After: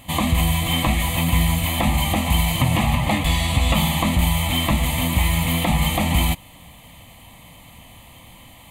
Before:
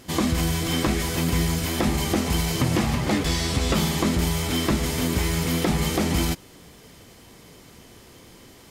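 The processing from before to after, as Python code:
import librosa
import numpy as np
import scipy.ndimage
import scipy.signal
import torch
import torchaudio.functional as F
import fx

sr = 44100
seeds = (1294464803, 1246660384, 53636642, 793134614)

y = fx.peak_eq(x, sr, hz=200.0, db=-2.5, octaves=1.9)
y = fx.fixed_phaser(y, sr, hz=1500.0, stages=6)
y = y * librosa.db_to_amplitude(7.5)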